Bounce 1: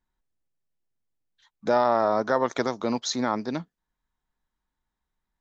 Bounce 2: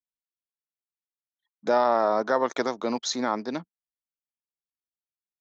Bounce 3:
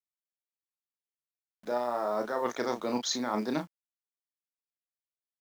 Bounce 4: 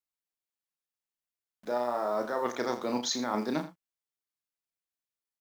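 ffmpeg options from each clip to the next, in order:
ffmpeg -i in.wav -af "highpass=220,anlmdn=0.00631" out.wav
ffmpeg -i in.wav -filter_complex "[0:a]areverse,acompressor=threshold=-30dB:ratio=20,areverse,acrusher=bits=9:mix=0:aa=0.000001,asplit=2[link_01][link_02];[link_02]adelay=33,volume=-6dB[link_03];[link_01][link_03]amix=inputs=2:normalize=0,volume=3dB" out.wav
ffmpeg -i in.wav -af "aecho=1:1:82:0.211" out.wav

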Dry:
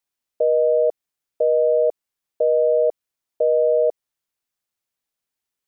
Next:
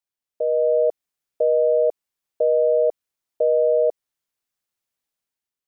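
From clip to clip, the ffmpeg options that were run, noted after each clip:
ffmpeg -i in.wav -af "dynaudnorm=framelen=110:gausssize=9:maxgain=7dB,volume=-7dB" out.wav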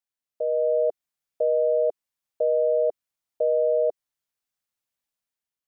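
ffmpeg -i in.wav -af "equalizer=frequency=380:width=4.6:gain=-7,volume=-3dB" out.wav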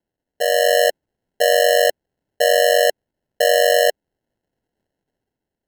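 ffmpeg -i in.wav -af "acrusher=samples=37:mix=1:aa=0.000001,volume=7dB" out.wav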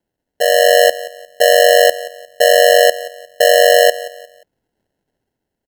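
ffmpeg -i in.wav -af "aecho=1:1:177|354|531:0.133|0.0453|0.0154,volume=5dB" out.wav

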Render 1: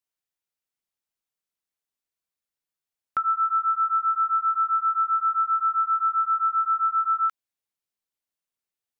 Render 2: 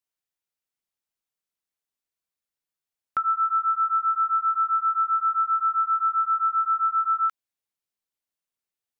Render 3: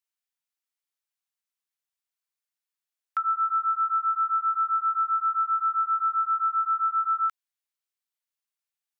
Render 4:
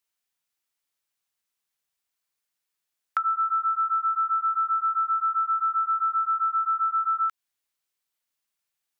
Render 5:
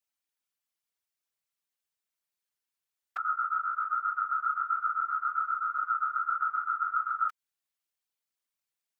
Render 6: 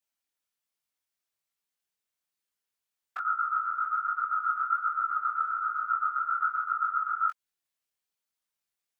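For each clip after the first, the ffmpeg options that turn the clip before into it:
ffmpeg -i in.wav -af anull out.wav
ffmpeg -i in.wav -af "highpass=940,volume=-1dB" out.wav
ffmpeg -i in.wav -af "acompressor=threshold=-29dB:ratio=6,volume=6.5dB" out.wav
ffmpeg -i in.wav -af "afftfilt=real='hypot(re,im)*cos(2*PI*random(0))':imag='hypot(re,im)*sin(2*PI*random(1))':win_size=512:overlap=0.75" out.wav
ffmpeg -i in.wav -af "flanger=delay=18.5:depth=5:speed=1.2,volume=4dB" out.wav

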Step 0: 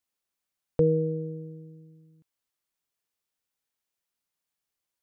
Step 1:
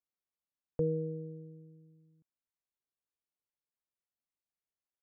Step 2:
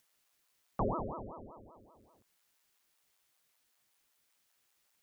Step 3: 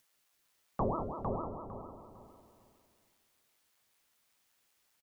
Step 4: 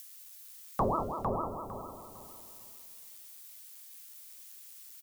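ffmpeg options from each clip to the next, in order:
ffmpeg -i in.wav -af "lowpass=frequency=1000:poles=1,volume=-8.5dB" out.wav
ffmpeg -i in.wav -filter_complex "[0:a]acrossover=split=560[link_01][link_02];[link_02]acompressor=mode=upward:threshold=-54dB:ratio=2.5[link_03];[link_01][link_03]amix=inputs=2:normalize=0,aeval=exprs='val(0)*sin(2*PI*440*n/s+440*0.9/5.2*sin(2*PI*5.2*n/s))':channel_layout=same,volume=1dB" out.wav
ffmpeg -i in.wav -filter_complex "[0:a]flanger=delay=7.4:depth=6.3:regen=-69:speed=0.6:shape=triangular,asplit=2[link_01][link_02];[link_02]adelay=454,lowpass=frequency=3900:poles=1,volume=-3.5dB,asplit=2[link_03][link_04];[link_04]adelay=454,lowpass=frequency=3900:poles=1,volume=0.27,asplit=2[link_05][link_06];[link_06]adelay=454,lowpass=frequency=3900:poles=1,volume=0.27,asplit=2[link_07][link_08];[link_08]adelay=454,lowpass=frequency=3900:poles=1,volume=0.27[link_09];[link_03][link_05][link_07][link_09]amix=inputs=4:normalize=0[link_10];[link_01][link_10]amix=inputs=2:normalize=0,volume=5dB" out.wav
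ffmpeg -i in.wav -af "crystalizer=i=9.5:c=0,volume=1dB" out.wav

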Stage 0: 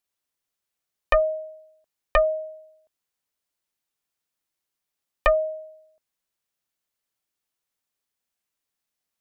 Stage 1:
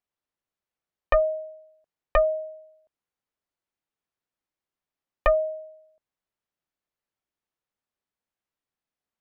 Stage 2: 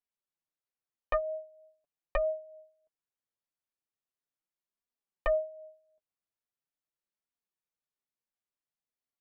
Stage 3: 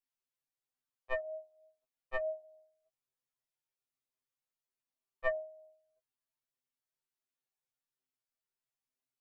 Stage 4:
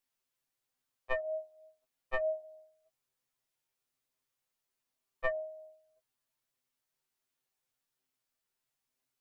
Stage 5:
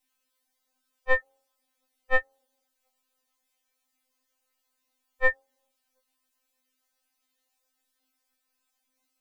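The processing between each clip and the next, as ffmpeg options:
ffmpeg -i in.wav -af "lowpass=frequency=1500:poles=1" out.wav
ffmpeg -i in.wav -af "flanger=delay=4:depth=6.2:regen=27:speed=0.41:shape=triangular,volume=-5.5dB" out.wav
ffmpeg -i in.wav -af "afftfilt=real='re*2.45*eq(mod(b,6),0)':imag='im*2.45*eq(mod(b,6),0)':win_size=2048:overlap=0.75" out.wav
ffmpeg -i in.wav -af "acompressor=threshold=-35dB:ratio=6,volume=6.5dB" out.wav
ffmpeg -i in.wav -af "afftfilt=real='re*3.46*eq(mod(b,12),0)':imag='im*3.46*eq(mod(b,12),0)':win_size=2048:overlap=0.75,volume=6.5dB" out.wav

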